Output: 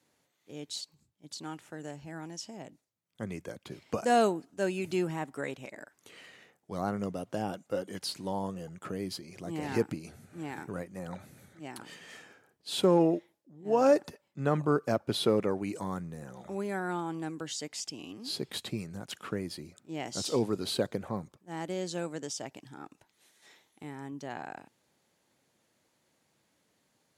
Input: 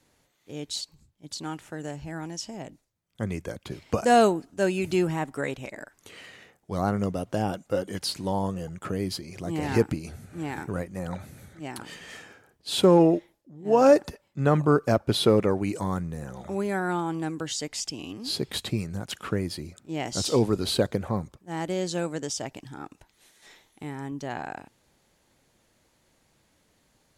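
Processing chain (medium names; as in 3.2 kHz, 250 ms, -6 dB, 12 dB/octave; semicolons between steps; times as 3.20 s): high-pass 130 Hz 12 dB/octave; trim -6 dB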